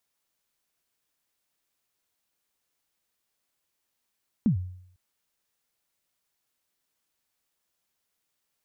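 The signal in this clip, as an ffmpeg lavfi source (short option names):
-f lavfi -i "aevalsrc='0.158*pow(10,-3*t/0.67)*sin(2*PI*(250*0.105/log(91/250)*(exp(log(91/250)*min(t,0.105)/0.105)-1)+91*max(t-0.105,0)))':d=0.5:s=44100"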